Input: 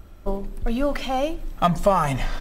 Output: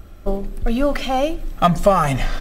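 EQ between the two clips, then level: Butterworth band-stop 940 Hz, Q 7.1; +4.5 dB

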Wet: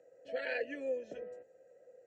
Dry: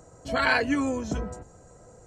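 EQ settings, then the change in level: vowel filter e; high-pass 170 Hz 6 dB/octave; dynamic bell 1.3 kHz, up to -5 dB, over -52 dBFS, Q 1.3; 0.0 dB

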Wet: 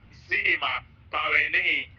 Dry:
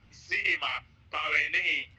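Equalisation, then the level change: low-pass 5.4 kHz 12 dB/octave; distance through air 190 m; +6.5 dB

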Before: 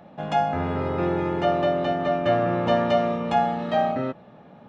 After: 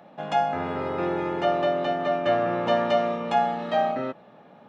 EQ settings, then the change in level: high-pass 320 Hz 6 dB/octave; 0.0 dB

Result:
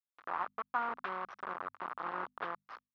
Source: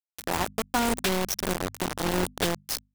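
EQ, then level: band-pass filter 1.2 kHz, Q 3.9; distance through air 320 m; +2.0 dB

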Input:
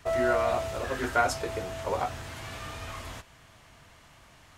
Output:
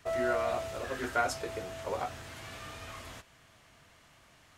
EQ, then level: bass shelf 96 Hz -7 dB; peaking EQ 920 Hz -3 dB 0.51 oct; -4.0 dB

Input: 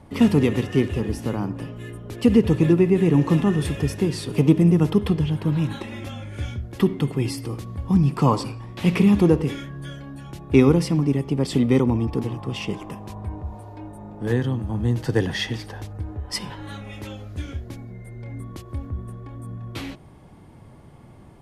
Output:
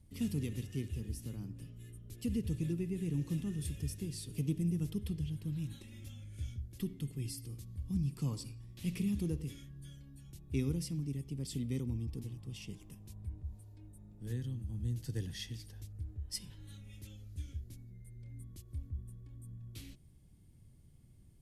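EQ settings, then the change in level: pre-emphasis filter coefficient 0.8; amplifier tone stack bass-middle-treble 10-0-1; +12.0 dB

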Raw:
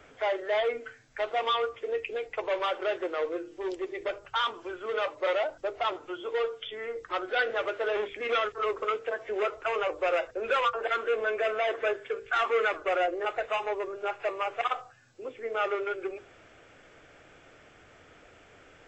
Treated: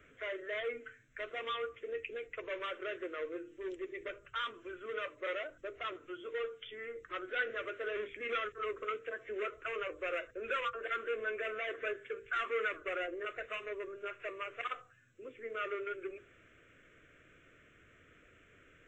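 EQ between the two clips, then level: static phaser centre 2 kHz, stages 4; -5.0 dB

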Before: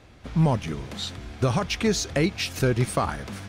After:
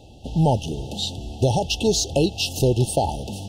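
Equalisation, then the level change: dynamic bell 200 Hz, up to -6 dB, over -37 dBFS, Q 1.4; brick-wall FIR band-stop 900–2600 Hz; peaking EQ 890 Hz +4 dB 0.34 oct; +5.5 dB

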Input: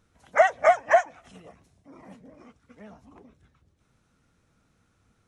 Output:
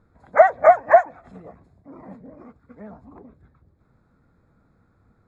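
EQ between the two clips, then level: boxcar filter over 15 samples; +7.0 dB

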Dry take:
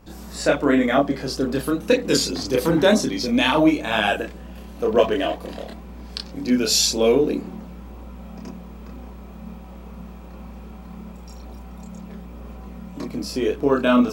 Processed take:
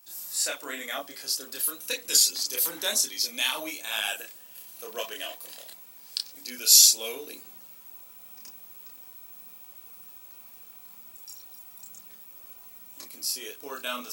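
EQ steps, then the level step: RIAA curve recording; tilt EQ +3.5 dB/octave; -14.5 dB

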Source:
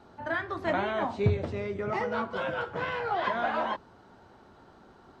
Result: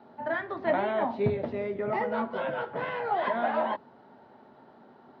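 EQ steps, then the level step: cabinet simulation 140–4400 Hz, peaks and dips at 140 Hz +6 dB, 240 Hz +10 dB, 420 Hz +5 dB, 610 Hz +8 dB, 870 Hz +7 dB, 1.9 kHz +5 dB; -4.5 dB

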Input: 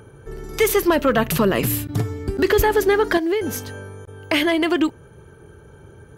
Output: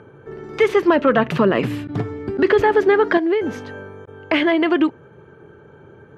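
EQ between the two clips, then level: high-pass 150 Hz 12 dB/octave; low-pass 2.5 kHz 12 dB/octave; +2.5 dB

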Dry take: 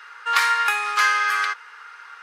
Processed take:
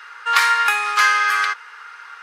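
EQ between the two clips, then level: peaking EQ 220 Hz -2 dB 2.4 oct; +3.5 dB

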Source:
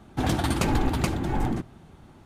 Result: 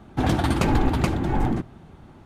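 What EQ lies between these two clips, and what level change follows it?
peaking EQ 12 kHz -7.5 dB 2.3 oct; +3.5 dB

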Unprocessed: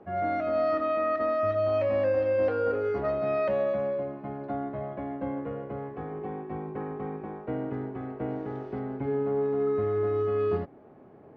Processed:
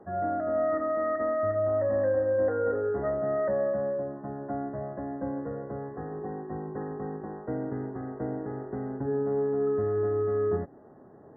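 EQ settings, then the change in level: dynamic bell 1.1 kHz, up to -4 dB, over -46 dBFS, Q 2; brick-wall FIR low-pass 2 kHz; 0.0 dB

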